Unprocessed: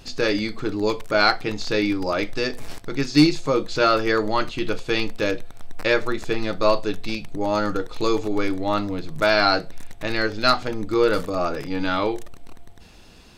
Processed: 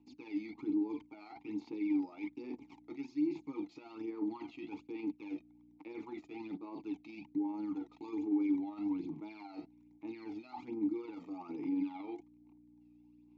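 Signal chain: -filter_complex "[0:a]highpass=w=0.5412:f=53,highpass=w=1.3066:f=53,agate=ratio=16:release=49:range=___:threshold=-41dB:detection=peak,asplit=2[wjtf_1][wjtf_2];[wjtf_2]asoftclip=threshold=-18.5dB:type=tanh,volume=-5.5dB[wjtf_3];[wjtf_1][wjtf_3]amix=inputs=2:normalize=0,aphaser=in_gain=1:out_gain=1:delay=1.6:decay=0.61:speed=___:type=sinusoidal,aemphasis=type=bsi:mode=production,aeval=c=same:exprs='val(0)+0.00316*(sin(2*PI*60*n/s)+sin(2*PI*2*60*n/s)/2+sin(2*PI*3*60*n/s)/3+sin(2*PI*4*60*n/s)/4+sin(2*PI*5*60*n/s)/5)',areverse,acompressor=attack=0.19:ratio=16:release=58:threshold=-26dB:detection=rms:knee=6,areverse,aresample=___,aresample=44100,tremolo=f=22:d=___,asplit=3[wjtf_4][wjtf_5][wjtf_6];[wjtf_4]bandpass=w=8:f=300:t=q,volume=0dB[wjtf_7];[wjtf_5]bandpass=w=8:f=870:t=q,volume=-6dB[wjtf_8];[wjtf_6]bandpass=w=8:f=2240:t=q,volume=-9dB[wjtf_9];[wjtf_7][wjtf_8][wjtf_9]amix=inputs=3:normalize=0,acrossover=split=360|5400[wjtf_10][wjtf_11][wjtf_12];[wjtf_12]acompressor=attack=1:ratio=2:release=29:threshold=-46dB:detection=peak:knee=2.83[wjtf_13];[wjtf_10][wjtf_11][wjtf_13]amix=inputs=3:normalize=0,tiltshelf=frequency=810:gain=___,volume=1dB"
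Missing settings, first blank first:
-23dB, 1.2, 16000, 0.261, 5.5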